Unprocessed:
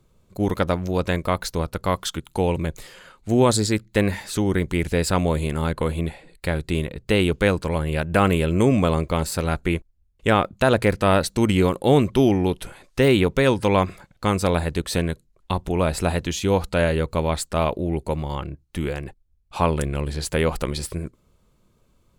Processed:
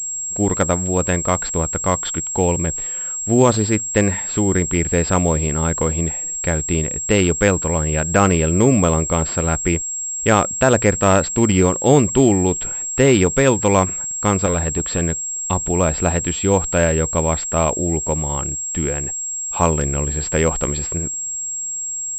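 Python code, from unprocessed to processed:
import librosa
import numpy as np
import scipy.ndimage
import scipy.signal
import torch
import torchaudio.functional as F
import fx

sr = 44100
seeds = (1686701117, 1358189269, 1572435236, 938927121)

y = fx.clip_hard(x, sr, threshold_db=-18.0, at=(14.46, 15.01))
y = fx.pwm(y, sr, carrier_hz=7600.0)
y = F.gain(torch.from_numpy(y), 3.5).numpy()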